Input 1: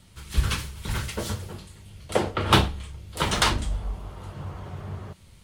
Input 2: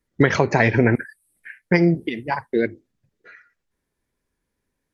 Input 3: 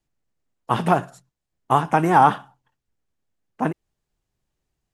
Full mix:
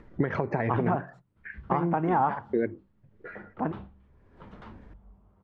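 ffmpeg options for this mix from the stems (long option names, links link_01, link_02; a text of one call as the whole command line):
ffmpeg -i stem1.wav -i stem2.wav -i stem3.wav -filter_complex "[0:a]flanger=delay=6.4:depth=9:regen=-67:speed=0.9:shape=sinusoidal,equalizer=frequency=210:width_type=o:width=0.41:gain=10.5,adelay=1200,volume=-19.5dB[link_01];[1:a]acompressor=threshold=-16dB:ratio=6,volume=1dB,asplit=2[link_02][link_03];[2:a]volume=2.5dB[link_04];[link_03]apad=whole_len=217604[link_05];[link_04][link_05]sidechaingate=range=-7dB:threshold=-49dB:ratio=16:detection=peak[link_06];[link_02][link_06]amix=inputs=2:normalize=0,acompressor=mode=upward:threshold=-32dB:ratio=2.5,alimiter=limit=-9dB:level=0:latency=1:release=469,volume=0dB[link_07];[link_01][link_07]amix=inputs=2:normalize=0,lowpass=1400,acompressor=threshold=-28dB:ratio=1.5" out.wav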